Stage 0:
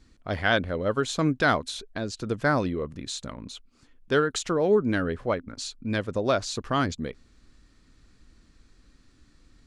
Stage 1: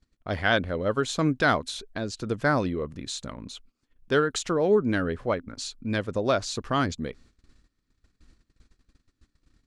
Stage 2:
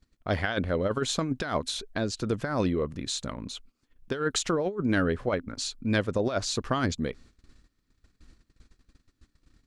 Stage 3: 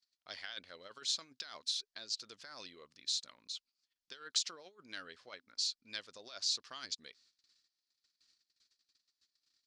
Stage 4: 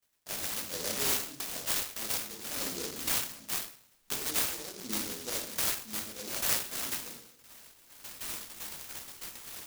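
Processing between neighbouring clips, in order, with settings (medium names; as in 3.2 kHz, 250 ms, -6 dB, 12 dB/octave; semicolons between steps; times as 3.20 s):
gate -53 dBFS, range -19 dB
compressor with a negative ratio -25 dBFS, ratio -0.5
band-pass filter 4.8 kHz, Q 2.8; trim +1 dB
recorder AGC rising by 26 dB/s; simulated room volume 130 m³, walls mixed, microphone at 1.6 m; delay time shaken by noise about 5.2 kHz, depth 0.33 ms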